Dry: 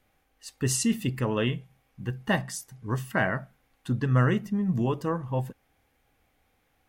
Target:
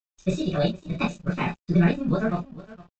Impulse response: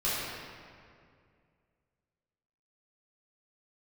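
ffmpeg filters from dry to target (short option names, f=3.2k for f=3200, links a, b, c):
-filter_complex "[0:a]asetrate=59535,aresample=44100,acrossover=split=4000[a][b];[b]asoftclip=type=tanh:threshold=-30dB[c];[a][c]amix=inputs=2:normalize=0,aecho=1:1:781:0.15,agate=range=-44dB:threshold=-56dB:ratio=16:detection=peak[d];[1:a]atrim=start_sample=2205,afade=t=out:st=0.14:d=0.01,atrim=end_sample=6615[e];[d][e]afir=irnorm=-1:irlink=0,aresample=16000,aeval=exprs='sgn(val(0))*max(abs(val(0))-0.00531,0)':c=same,aresample=44100,bandreject=f=2.1k:w=8.9,atempo=1.7,lowshelf=f=190:g=11.5,volume=-5.5dB"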